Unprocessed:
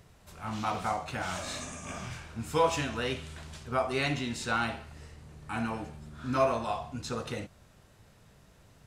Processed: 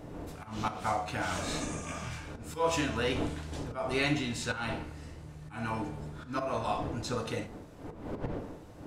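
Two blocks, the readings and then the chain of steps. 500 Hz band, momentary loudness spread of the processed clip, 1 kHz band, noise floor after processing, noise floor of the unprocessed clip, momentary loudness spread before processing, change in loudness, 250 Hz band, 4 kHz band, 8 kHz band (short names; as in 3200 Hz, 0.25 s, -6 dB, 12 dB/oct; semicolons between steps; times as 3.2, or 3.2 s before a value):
-2.0 dB, 15 LU, -2.5 dB, -49 dBFS, -60 dBFS, 16 LU, -1.5 dB, +1.0 dB, 0.0 dB, 0.0 dB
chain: wind noise 420 Hz -40 dBFS; auto swell 0.191 s; FDN reverb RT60 0.51 s, low-frequency decay 1.1×, high-frequency decay 0.6×, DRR 7 dB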